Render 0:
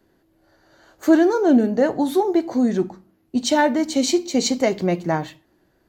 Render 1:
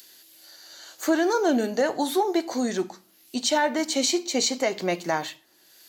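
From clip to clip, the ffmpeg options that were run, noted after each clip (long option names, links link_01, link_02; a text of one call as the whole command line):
ffmpeg -i in.wav -filter_complex "[0:a]highpass=frequency=830:poles=1,acrossover=split=3100[link_01][link_02];[link_02]acompressor=mode=upward:threshold=-34dB:ratio=2.5[link_03];[link_01][link_03]amix=inputs=2:normalize=0,alimiter=limit=-15dB:level=0:latency=1:release=99,volume=2.5dB" out.wav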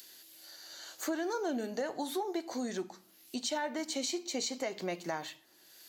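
ffmpeg -i in.wav -af "acompressor=threshold=-36dB:ratio=2,volume=-3dB" out.wav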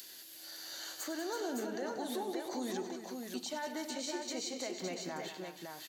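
ffmpeg -i in.wav -af "alimiter=level_in=10dB:limit=-24dB:level=0:latency=1:release=472,volume=-10dB,aecho=1:1:99|186|328|561:0.224|0.299|0.335|0.596,volume=3dB" out.wav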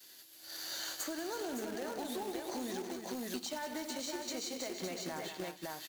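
ffmpeg -i in.wav -af "acrusher=bits=2:mode=log:mix=0:aa=0.000001,agate=range=-33dB:threshold=-41dB:ratio=3:detection=peak,acompressor=threshold=-45dB:ratio=6,volume=8dB" out.wav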